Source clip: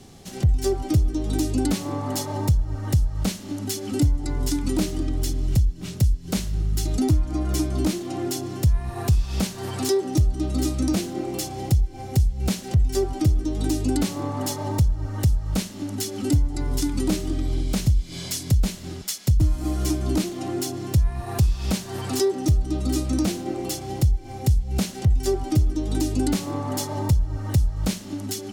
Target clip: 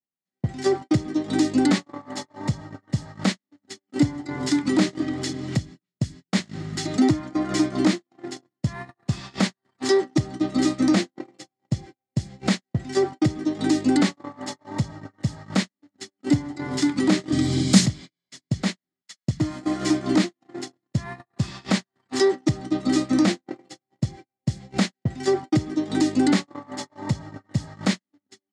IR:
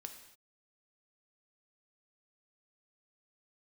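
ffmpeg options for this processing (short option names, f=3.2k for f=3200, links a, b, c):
-filter_complex "[0:a]asettb=1/sr,asplit=3[a][b][c];[a]atrim=end=17.324[d];[b]atrim=start=17.32:end=17.86,asetpts=PTS-STARTPTS,afade=t=in:d=0.004:c=qsin,afade=t=out:st=0.536:d=0.004:c=qsin,bass=f=250:g=12,treble=f=4k:g=15[e];[c]atrim=start=17.856[f];[d][e]acrossfade=d=0.004:c1=hsin:c2=qsin[g];[g][f]acrossfade=d=0.004:c1=qsin:c2=hsin,agate=range=-58dB:threshold=-24dB:ratio=16:detection=peak,highpass=f=150:w=0.5412,highpass=f=150:w=1.3066,equalizer=f=170:t=q:w=4:g=-3,equalizer=f=430:t=q:w=4:g=-5,equalizer=f=1.2k:t=q:w=4:g=3,equalizer=f=1.9k:t=q:w=4:g=9,equalizer=f=2.7k:t=q:w=4:g=-3,equalizer=f=5.9k:t=q:w=4:g=-6,lowpass=f=7k:w=0.5412,lowpass=f=7k:w=1.3066,volume=5.5dB"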